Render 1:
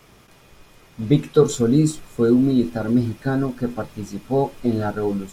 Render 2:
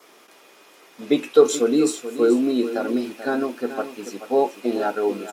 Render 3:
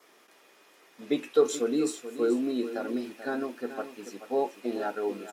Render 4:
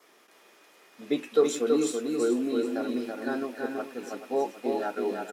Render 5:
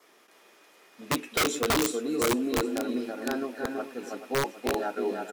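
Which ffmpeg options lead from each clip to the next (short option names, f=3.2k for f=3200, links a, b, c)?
-af "highpass=f=300:w=0.5412,highpass=f=300:w=1.3066,adynamicequalizer=threshold=0.00112:dfrequency=2600:dqfactor=5.1:tfrequency=2600:tqfactor=5.1:attack=5:release=100:ratio=0.375:range=3.5:mode=boostabove:tftype=bell,aecho=1:1:433:0.251,volume=2dB"
-af "equalizer=f=1.8k:t=o:w=0.25:g=4.5,volume=-8.5dB"
-af "aecho=1:1:329:0.631"
-af "aeval=exprs='(mod(8.91*val(0)+1,2)-1)/8.91':c=same"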